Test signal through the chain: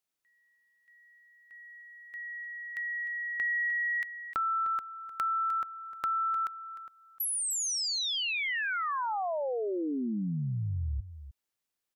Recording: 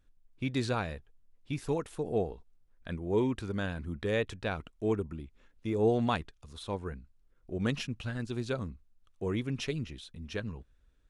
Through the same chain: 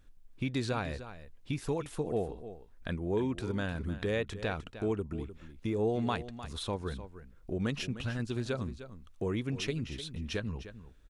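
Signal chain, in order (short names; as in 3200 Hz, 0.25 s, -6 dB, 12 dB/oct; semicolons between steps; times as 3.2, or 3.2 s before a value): compressor 2:1, threshold -44 dBFS; on a send: echo 0.304 s -13 dB; on the sum: gain +7.5 dB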